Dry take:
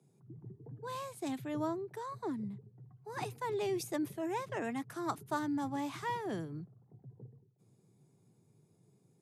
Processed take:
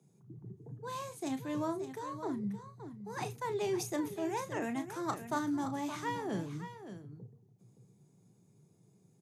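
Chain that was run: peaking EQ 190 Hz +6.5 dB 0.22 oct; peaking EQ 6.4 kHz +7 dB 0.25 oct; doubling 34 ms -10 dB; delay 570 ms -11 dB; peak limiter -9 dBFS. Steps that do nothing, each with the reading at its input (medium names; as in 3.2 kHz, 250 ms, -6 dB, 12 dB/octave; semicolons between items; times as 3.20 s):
peak limiter -9 dBFS: peak at its input -21.5 dBFS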